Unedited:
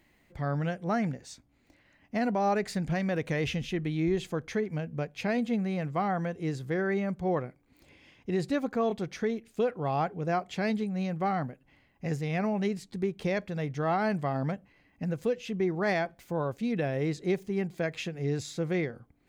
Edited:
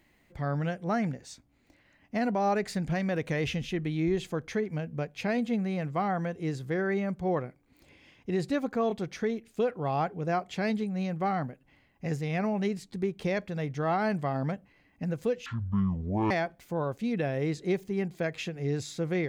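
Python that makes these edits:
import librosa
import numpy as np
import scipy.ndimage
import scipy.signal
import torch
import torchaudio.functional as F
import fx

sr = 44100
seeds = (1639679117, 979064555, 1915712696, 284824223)

y = fx.edit(x, sr, fx.speed_span(start_s=15.46, length_s=0.44, speed=0.52), tone=tone)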